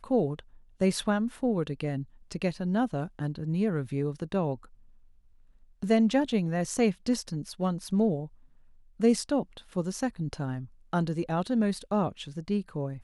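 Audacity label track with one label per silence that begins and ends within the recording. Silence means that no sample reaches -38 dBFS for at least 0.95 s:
4.550000	5.820000	silence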